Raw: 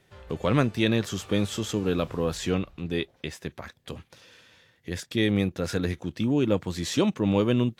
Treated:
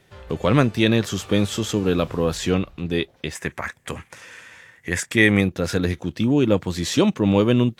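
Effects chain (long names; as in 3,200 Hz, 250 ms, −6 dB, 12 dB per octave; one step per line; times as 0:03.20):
0:03.35–0:05.41: graphic EQ with 10 bands 1,000 Hz +5 dB, 2,000 Hz +11 dB, 4,000 Hz −8 dB, 8,000 Hz +11 dB
level +5.5 dB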